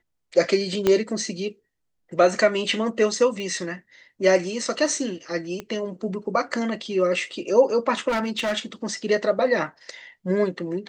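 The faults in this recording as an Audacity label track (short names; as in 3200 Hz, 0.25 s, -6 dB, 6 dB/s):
0.870000	0.870000	pop -7 dBFS
3.400000	3.400000	pop -22 dBFS
5.600000	5.600000	pop -18 dBFS
8.080000	8.580000	clipped -20.5 dBFS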